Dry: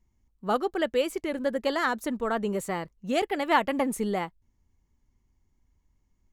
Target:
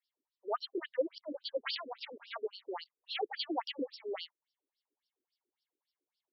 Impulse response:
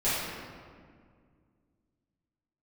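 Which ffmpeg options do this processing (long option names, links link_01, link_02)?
-filter_complex "[0:a]aexciter=amount=2.9:drive=9.7:freq=3300,asettb=1/sr,asplit=3[link_01][link_02][link_03];[link_01]atrim=end=1.634[link_04];[link_02]atrim=start=1.63:end=2.36,asetpts=PTS-STARTPTS,afade=type=in:duration=0.004:curve=qsin,afade=type=out:start_time=0.726:duration=0.004:curve=qsin,acrusher=bits=4:dc=4:mix=0:aa=0.000001[link_05];[link_03]atrim=start=2.356[link_06];[link_04][link_05]acrossfade=duration=0.004:curve1=hsin:curve2=qsin[link_07];[link_07][link_06]acrossfade=duration=0.004:curve1=qsin:curve2=hsin,afftfilt=real='re*between(b*sr/1024,360*pow(4000/360,0.5+0.5*sin(2*PI*3.6*pts/sr))/1.41,360*pow(4000/360,0.5+0.5*sin(2*PI*3.6*pts/sr))*1.41)':imag='im*between(b*sr/1024,360*pow(4000/360,0.5+0.5*sin(2*PI*3.6*pts/sr))/1.41,360*pow(4000/360,0.5+0.5*sin(2*PI*3.6*pts/sr))*1.41)':win_size=1024:overlap=0.75,volume=-4dB"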